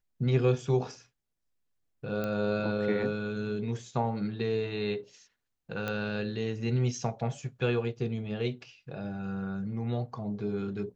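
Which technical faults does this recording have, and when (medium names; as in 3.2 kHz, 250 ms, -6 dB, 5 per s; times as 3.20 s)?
2.24 s: pop -20 dBFS
5.88 s: pop -19 dBFS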